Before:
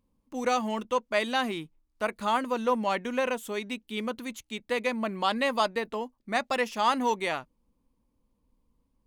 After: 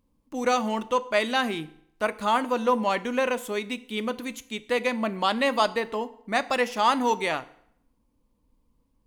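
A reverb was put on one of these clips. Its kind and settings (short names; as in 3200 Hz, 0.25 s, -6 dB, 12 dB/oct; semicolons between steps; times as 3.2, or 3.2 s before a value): FDN reverb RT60 0.7 s, low-frequency decay 0.95×, high-frequency decay 0.85×, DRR 13.5 dB; gain +3 dB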